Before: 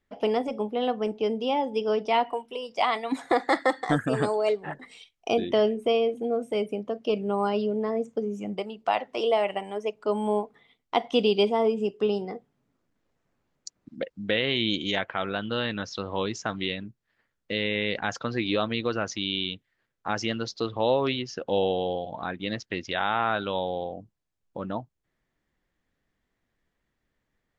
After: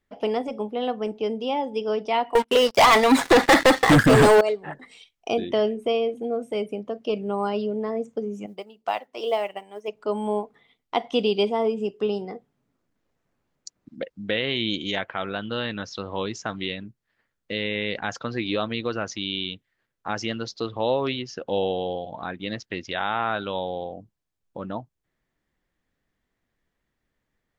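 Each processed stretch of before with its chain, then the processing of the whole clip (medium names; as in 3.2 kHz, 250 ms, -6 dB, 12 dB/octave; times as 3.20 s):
2.35–4.41 s: band-stop 730 Hz, Q 7.6 + waveshaping leveller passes 5
8.46–9.88 s: tone controls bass -4 dB, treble +3 dB + modulation noise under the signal 35 dB + upward expansion, over -40 dBFS
whole clip: none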